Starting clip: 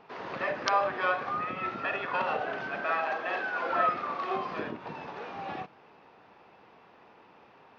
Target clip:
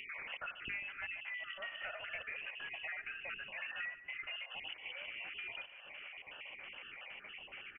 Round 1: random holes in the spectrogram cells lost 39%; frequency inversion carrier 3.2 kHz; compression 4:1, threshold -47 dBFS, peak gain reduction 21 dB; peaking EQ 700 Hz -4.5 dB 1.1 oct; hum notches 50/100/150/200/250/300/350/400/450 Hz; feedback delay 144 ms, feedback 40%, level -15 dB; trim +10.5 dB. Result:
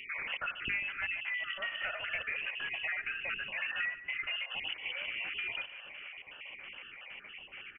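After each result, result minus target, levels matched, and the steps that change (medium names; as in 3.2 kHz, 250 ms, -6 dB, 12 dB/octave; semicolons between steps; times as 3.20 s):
compression: peak gain reduction -8 dB; 500 Hz band -3.5 dB
change: compression 4:1, threshold -57.5 dBFS, peak gain reduction 29 dB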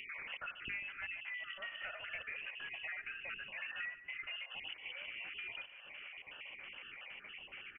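500 Hz band -3.5 dB
remove: peaking EQ 700 Hz -4.5 dB 1.1 oct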